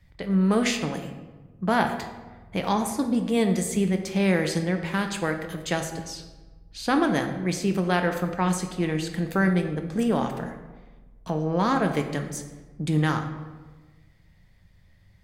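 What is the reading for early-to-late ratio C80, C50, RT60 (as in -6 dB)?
9.5 dB, 8.0 dB, 1.3 s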